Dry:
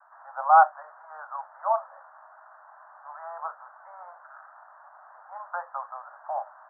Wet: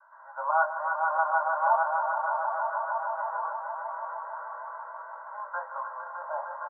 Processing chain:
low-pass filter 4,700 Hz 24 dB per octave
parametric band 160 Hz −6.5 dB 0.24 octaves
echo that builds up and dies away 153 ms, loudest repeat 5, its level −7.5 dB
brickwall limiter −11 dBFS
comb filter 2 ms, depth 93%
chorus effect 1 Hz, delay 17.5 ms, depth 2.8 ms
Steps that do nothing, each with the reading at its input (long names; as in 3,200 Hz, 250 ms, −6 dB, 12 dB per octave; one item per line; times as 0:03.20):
low-pass filter 4,700 Hz: nothing at its input above 1,800 Hz
parametric band 160 Hz: nothing at its input below 480 Hz